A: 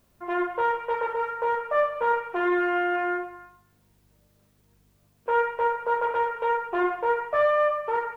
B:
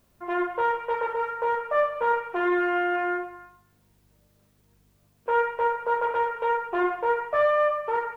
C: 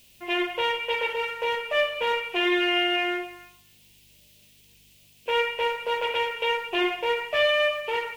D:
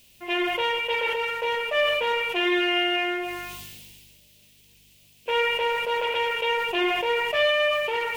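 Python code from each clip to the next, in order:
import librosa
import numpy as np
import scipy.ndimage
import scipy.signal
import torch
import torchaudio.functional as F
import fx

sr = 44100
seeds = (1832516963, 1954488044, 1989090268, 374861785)

y1 = x
y2 = fx.high_shelf_res(y1, sr, hz=1900.0, db=13.0, q=3.0)
y3 = fx.sustainer(y2, sr, db_per_s=27.0)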